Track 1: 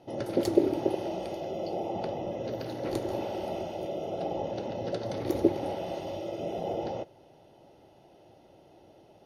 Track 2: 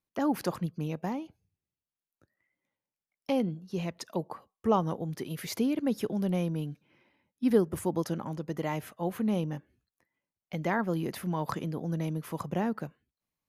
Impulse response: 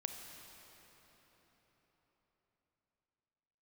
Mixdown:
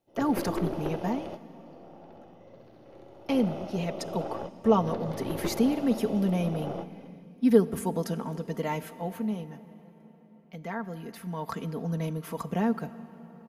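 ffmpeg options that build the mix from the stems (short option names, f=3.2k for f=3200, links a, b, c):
-filter_complex "[0:a]acrossover=split=3100[a][b];[b]acompressor=threshold=-57dB:ratio=4:attack=1:release=60[c];[a][c]amix=inputs=2:normalize=0,aeval=exprs='(tanh(17.8*val(0)+0.6)-tanh(0.6))/17.8':c=same,volume=-1dB,asplit=3[d][e][f];[e]volume=-23.5dB[g];[f]volume=-17dB[h];[1:a]aecho=1:1:4.4:0.66,volume=6.5dB,afade=t=out:st=8.77:d=0.6:silence=0.354813,afade=t=in:st=11.1:d=0.75:silence=0.354813,asplit=3[i][j][k];[j]volume=-5.5dB[l];[k]apad=whole_len=407960[m];[d][m]sidechaingate=range=-27dB:threshold=-54dB:ratio=16:detection=peak[n];[2:a]atrim=start_sample=2205[o];[g][l]amix=inputs=2:normalize=0[p];[p][o]afir=irnorm=-1:irlink=0[q];[h]aecho=0:1:66|132|198|264|330|396|462|528:1|0.56|0.314|0.176|0.0983|0.0551|0.0308|0.0173[r];[n][i][q][r]amix=inputs=4:normalize=0"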